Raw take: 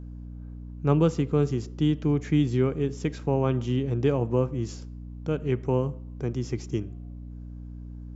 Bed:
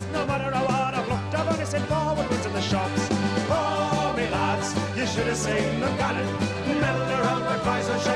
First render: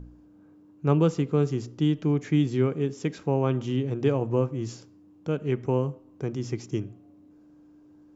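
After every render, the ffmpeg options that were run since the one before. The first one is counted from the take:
-af "bandreject=f=60:t=h:w=4,bandreject=f=120:t=h:w=4,bandreject=f=180:t=h:w=4,bandreject=f=240:t=h:w=4"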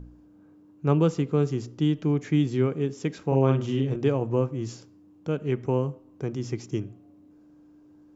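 -filter_complex "[0:a]asettb=1/sr,asplit=3[a][b][c];[a]atrim=end=3.274[d];[b]atrim=start=3.27:end=3.96,asetpts=PTS-STARTPTS,afade=t=in:d=0.004:c=qsin,afade=t=out:st=0.686:d=0.004:c=qsin,asplit=2[e][f];[f]adelay=45,volume=-3.5dB[g];[e][g]amix=inputs=2:normalize=0,atrim=end_sample=30429[h];[c]atrim=start=3.956[i];[d][h]acrossfade=d=0.004:c1=hsin:c2=qsin[j];[j][i]acrossfade=d=0.004:c1=qsin:c2=hsin"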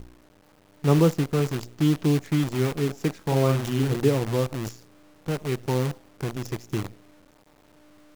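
-af "aphaser=in_gain=1:out_gain=1:delay=1.7:decay=0.29:speed=1:type=sinusoidal,acrusher=bits=6:dc=4:mix=0:aa=0.000001"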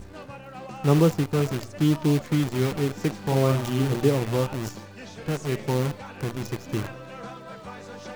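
-filter_complex "[1:a]volume=-15.5dB[a];[0:a][a]amix=inputs=2:normalize=0"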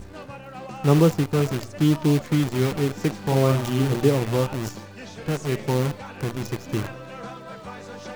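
-af "volume=2dB"

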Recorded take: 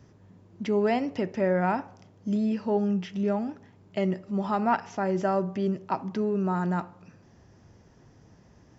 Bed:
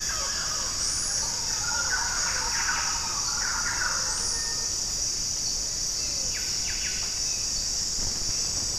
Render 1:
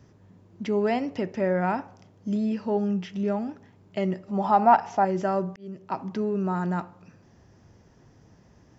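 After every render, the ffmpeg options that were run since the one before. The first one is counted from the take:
-filter_complex "[0:a]asettb=1/sr,asplit=3[a][b][c];[a]atrim=end=4.284[d];[b]atrim=start=4.28:end=5.05,asetpts=PTS-STARTPTS,afade=t=in:d=0.004:c=qsin,afade=t=out:st=0.766:d=0.004:c=qsin,equalizer=f=780:t=o:w=0.81:g=11[e];[c]atrim=start=5.046[f];[d][e]acrossfade=d=0.004:c1=hsin:c2=qsin[g];[g][f]acrossfade=d=0.004:c1=qsin:c2=hsin,asplit=2[h][i];[h]atrim=end=5.56,asetpts=PTS-STARTPTS,afade=t=out:st=5.556:d=0.004:c=hsin[j];[i]atrim=start=5.56,asetpts=PTS-STARTPTS,afade=t=in:d=0.46[k];[j][k]concat=n=2:v=0:a=1"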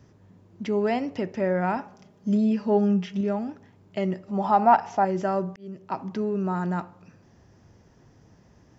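-filter_complex "[0:a]asettb=1/sr,asplit=3[a][b][c];[a]atrim=end=1.764[d];[b]atrim=start=1.76:end=3.21,asetpts=PTS-STARTPTS,afade=t=in:d=0.004:c=qsin,afade=t=out:st=1.446:d=0.004:c=qsin,aecho=1:1:4.9:0.65,atrim=end_sample=63945[e];[c]atrim=start=3.206[f];[d][e]acrossfade=d=0.004:c1=hsin:c2=qsin[g];[g][f]acrossfade=d=0.004:c1=qsin:c2=hsin"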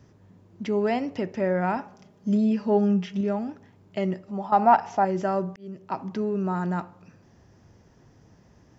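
-filter_complex "[0:a]asplit=2[a][b];[a]atrim=end=4.52,asetpts=PTS-STARTPTS,afade=t=out:st=4.05:d=0.47:c=qsin:silence=0.237137[c];[b]atrim=start=4.52,asetpts=PTS-STARTPTS,afade=t=in:d=0.004:c=hsin:silence=0.237137[d];[c][d]concat=n=2:v=0:a=1"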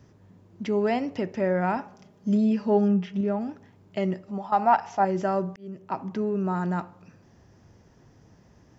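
-filter_complex "[0:a]asettb=1/sr,asplit=3[a][b][c];[a]atrim=end=2.884[d];[b]atrim=start=2.88:end=3.41,asetpts=PTS-STARTPTS,afade=t=in:d=0.004:c=qsin,afade=t=out:st=0.526:d=0.004:c=qsin,highshelf=f=4k:g=-11[e];[c]atrim=start=3.406[f];[d][e]acrossfade=d=0.004:c1=hsin:c2=qsin[g];[g][f]acrossfade=d=0.004:c1=qsin:c2=hsin,asettb=1/sr,asplit=3[h][i][j];[h]atrim=end=4.384[k];[i]atrim=start=4.38:end=5,asetpts=PTS-STARTPTS,afade=t=in:d=0.004:c=qsin,afade=t=out:st=0.616:d=0.004:c=qsin,equalizer=f=280:w=0.42:g=-5.5[l];[j]atrim=start=4.996[m];[k][l]acrossfade=d=0.004:c1=hsin:c2=qsin[n];[n][m]acrossfade=d=0.004:c1=qsin:c2=hsin,asettb=1/sr,asplit=3[o][p][q];[o]atrim=end=5.604[r];[p]atrim=start=5.6:end=6.48,asetpts=PTS-STARTPTS,afade=t=in:d=0.004:c=qsin,afade=t=out:st=0.876:d=0.004:c=qsin,equalizer=f=4.7k:t=o:w=0.99:g=-4[s];[q]atrim=start=6.476[t];[r][s]acrossfade=d=0.004:c1=hsin:c2=qsin[u];[u][t]acrossfade=d=0.004:c1=qsin:c2=hsin"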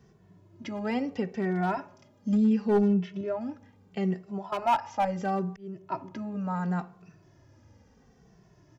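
-filter_complex "[0:a]asoftclip=type=hard:threshold=-16.5dB,asplit=2[a][b];[b]adelay=2.2,afreqshift=-0.73[c];[a][c]amix=inputs=2:normalize=1"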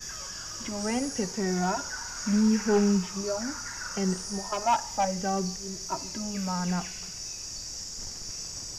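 -filter_complex "[1:a]volume=-10dB[a];[0:a][a]amix=inputs=2:normalize=0"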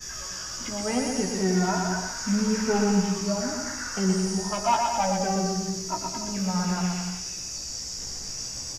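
-filter_complex "[0:a]asplit=2[a][b];[b]adelay=16,volume=-5dB[c];[a][c]amix=inputs=2:normalize=0,aecho=1:1:120|216|292.8|354.2|403.4:0.631|0.398|0.251|0.158|0.1"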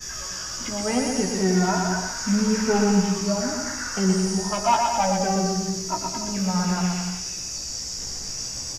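-af "volume=3dB"

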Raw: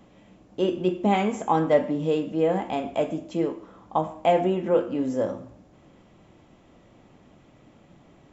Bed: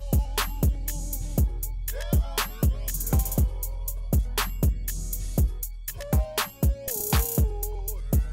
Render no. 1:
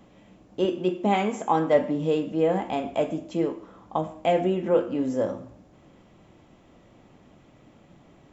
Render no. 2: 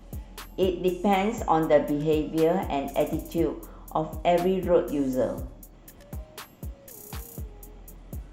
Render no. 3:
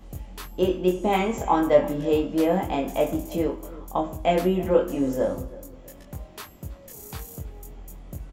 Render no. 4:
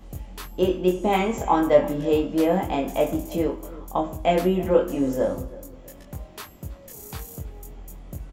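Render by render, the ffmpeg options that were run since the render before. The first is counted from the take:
-filter_complex "[0:a]asettb=1/sr,asplit=3[a][b][c];[a]atrim=end=0.654[d];[b]atrim=start=0.65:end=1.76,asetpts=PTS-STARTPTS,afade=t=in:d=0.004:c=qsin,afade=t=out:st=1.106:d=0.004:c=qsin,highpass=f=170:p=1[e];[c]atrim=start=1.756[f];[d][e]acrossfade=d=0.004:c1=hsin:c2=qsin[g];[g][f]acrossfade=d=0.004:c1=qsin:c2=hsin,asettb=1/sr,asplit=3[h][i][j];[h]atrim=end=3.964[k];[i]atrim=start=3.96:end=4.63,asetpts=PTS-STARTPTS,afade=t=in:d=0.004:c=qsin,afade=t=out:st=0.666:d=0.004:c=qsin,equalizer=f=930:t=o:w=0.77:g=-6.5[l];[j]atrim=start=4.626[m];[k][l]acrossfade=d=0.004:c1=hsin:c2=qsin[n];[n][m]acrossfade=d=0.004:c1=qsin:c2=hsin"
-filter_complex "[1:a]volume=-15dB[a];[0:a][a]amix=inputs=2:normalize=0"
-filter_complex "[0:a]asplit=2[a][b];[b]adelay=22,volume=-3dB[c];[a][c]amix=inputs=2:normalize=0,asplit=2[d][e];[e]adelay=325,lowpass=f=2.7k:p=1,volume=-18.5dB,asplit=2[f][g];[g]adelay=325,lowpass=f=2.7k:p=1,volume=0.43,asplit=2[h][i];[i]adelay=325,lowpass=f=2.7k:p=1,volume=0.43[j];[d][f][h][j]amix=inputs=4:normalize=0"
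-af "volume=1dB"

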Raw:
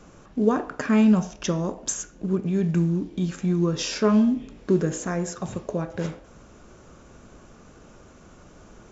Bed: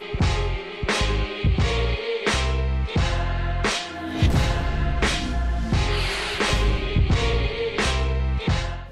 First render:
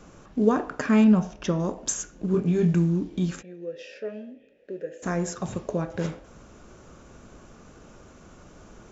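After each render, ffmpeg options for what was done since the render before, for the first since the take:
-filter_complex "[0:a]asettb=1/sr,asplit=3[a][b][c];[a]atrim=end=1.044[d];[b]atrim=start=1.04:end=1.6,asetpts=PTS-STARTPTS,afade=t=in:d=0.004:c=qsin,afade=t=out:st=0.556:d=0.004:c=qsin,lowpass=f=2.5k:p=1[e];[c]atrim=start=1.596[f];[d][e]acrossfade=d=0.004:c1=hsin:c2=qsin[g];[g][f]acrossfade=d=0.004:c1=qsin:c2=hsin,asettb=1/sr,asplit=3[h][i][j];[h]atrim=end=2.324[k];[i]atrim=start=2.32:end=2.74,asetpts=PTS-STARTPTS,afade=t=in:d=0.004:c=qsin,afade=t=out:st=0.416:d=0.004:c=qsin,asplit=2[l][m];[m]adelay=23,volume=-3.5dB[n];[l][n]amix=inputs=2:normalize=0,atrim=end_sample=18522[o];[j]atrim=start=2.736[p];[k][o]acrossfade=d=0.004:c1=hsin:c2=qsin[q];[q][p]acrossfade=d=0.004:c1=qsin:c2=hsin,asplit=3[r][s][t];[r]afade=t=out:st=3.41:d=0.02[u];[s]asplit=3[v][w][x];[v]bandpass=f=530:t=q:w=8,volume=0dB[y];[w]bandpass=f=1.84k:t=q:w=8,volume=-6dB[z];[x]bandpass=f=2.48k:t=q:w=8,volume=-9dB[aa];[y][z][aa]amix=inputs=3:normalize=0,afade=t=in:st=3.41:d=0.02,afade=t=out:st=5.02:d=0.02[ab];[t]afade=t=in:st=5.02:d=0.02[ac];[u][ab][ac]amix=inputs=3:normalize=0"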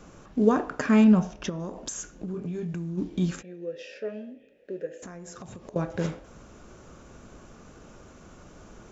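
-filter_complex "[0:a]asplit=3[a][b][c];[a]afade=t=out:st=1.48:d=0.02[d];[b]acompressor=threshold=-31dB:ratio=5:attack=3.2:release=140:knee=1:detection=peak,afade=t=in:st=1.48:d=0.02,afade=t=out:st=2.97:d=0.02[e];[c]afade=t=in:st=2.97:d=0.02[f];[d][e][f]amix=inputs=3:normalize=0,asettb=1/sr,asplit=3[g][h][i];[g]atrim=end=4.864[j];[h]atrim=start=4.86:end=5.76,asetpts=PTS-STARTPTS,afade=t=in:d=0.004:c=qsin,afade=t=out:st=0.896:d=0.004:c=qsin,acompressor=threshold=-38dB:ratio=16:attack=3.2:release=140:knee=1:detection=peak[k];[i]atrim=start=5.756[l];[j][k]acrossfade=d=0.004:c1=hsin:c2=qsin[m];[m][l]acrossfade=d=0.004:c1=qsin:c2=hsin"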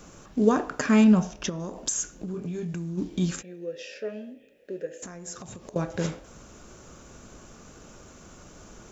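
-af "highshelf=f=4.6k:g=11"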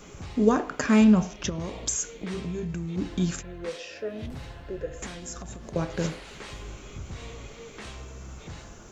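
-filter_complex "[1:a]volume=-19.5dB[a];[0:a][a]amix=inputs=2:normalize=0"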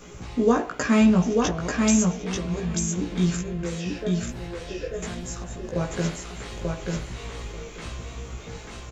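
-filter_complex "[0:a]asplit=2[a][b];[b]adelay=17,volume=-2.5dB[c];[a][c]amix=inputs=2:normalize=0,aecho=1:1:889|1778|2667:0.708|0.113|0.0181"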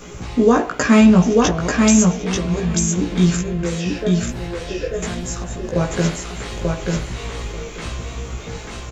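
-af "volume=7.5dB,alimiter=limit=-3dB:level=0:latency=1"

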